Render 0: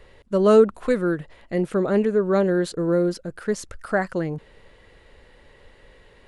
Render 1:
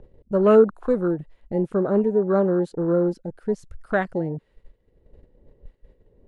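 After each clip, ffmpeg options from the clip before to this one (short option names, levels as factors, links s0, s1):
-filter_complex "[0:a]agate=range=0.224:threshold=0.00398:ratio=16:detection=peak,afwtdn=0.0355,acrossover=split=550|3300[s0][s1][s2];[s0]acompressor=mode=upward:threshold=0.0398:ratio=2.5[s3];[s3][s1][s2]amix=inputs=3:normalize=0"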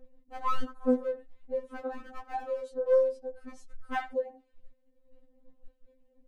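-filter_complex "[0:a]aeval=exprs='clip(val(0),-1,0.133)':c=same,asplit=2[s0][s1];[s1]adelay=80,highpass=300,lowpass=3400,asoftclip=type=hard:threshold=0.188,volume=0.126[s2];[s0][s2]amix=inputs=2:normalize=0,afftfilt=real='re*3.46*eq(mod(b,12),0)':imag='im*3.46*eq(mod(b,12),0)':win_size=2048:overlap=0.75,volume=0.562"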